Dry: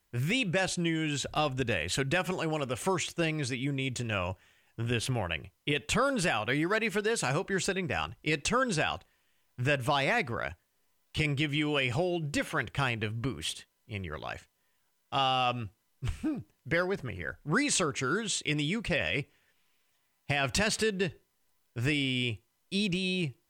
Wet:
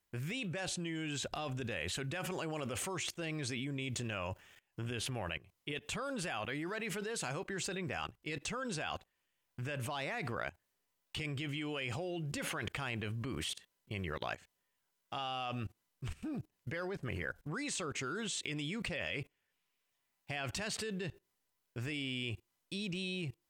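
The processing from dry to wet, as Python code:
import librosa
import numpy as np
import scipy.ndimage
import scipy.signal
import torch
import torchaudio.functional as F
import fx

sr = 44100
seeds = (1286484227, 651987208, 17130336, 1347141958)

y = fx.low_shelf(x, sr, hz=86.0, db=-6.0)
y = fx.level_steps(y, sr, step_db=22)
y = F.gain(torch.from_numpy(y), 5.0).numpy()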